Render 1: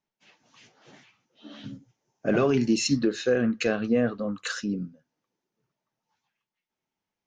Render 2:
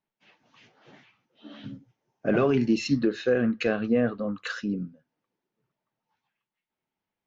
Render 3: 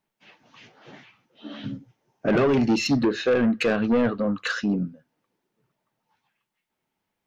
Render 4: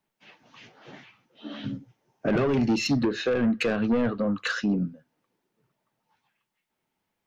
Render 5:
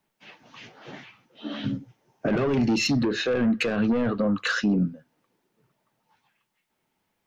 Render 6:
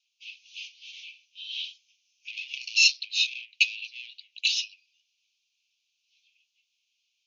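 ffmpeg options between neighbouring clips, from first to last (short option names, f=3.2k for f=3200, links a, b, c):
-af "lowpass=3.6k"
-af "asoftclip=type=tanh:threshold=-22.5dB,volume=7dB"
-filter_complex "[0:a]acrossover=split=180[a][b];[b]acompressor=threshold=-25dB:ratio=2[c];[a][c]amix=inputs=2:normalize=0"
-af "alimiter=limit=-20.5dB:level=0:latency=1:release=35,volume=4.5dB"
-af "asuperpass=centerf=4100:order=20:qfactor=0.95,volume=8dB"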